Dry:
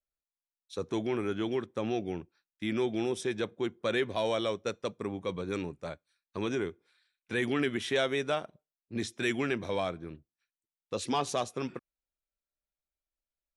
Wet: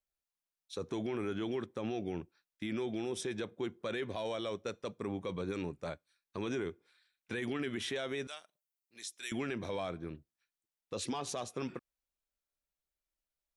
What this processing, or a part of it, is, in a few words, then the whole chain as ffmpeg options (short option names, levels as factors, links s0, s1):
stacked limiters: -filter_complex "[0:a]asettb=1/sr,asplit=3[s0][s1][s2];[s0]atrim=end=8.274[s3];[s1]atrim=start=8.27:end=9.32,asetpts=PTS-STARTPTS,afade=t=in:d=0.004:c=qsin,afade=t=out:st=1.046:d=0.004:c=qsin,aderivative[s4];[s2]atrim=start=9.316[s5];[s3][s4]acrossfade=d=0.004:c1=hsin:c2=qsin[s6];[s6][s5]acrossfade=d=0.004:c1=qsin:c2=hsin,alimiter=limit=0.0794:level=0:latency=1:release=237,alimiter=level_in=1.58:limit=0.0631:level=0:latency=1:release=35,volume=0.631"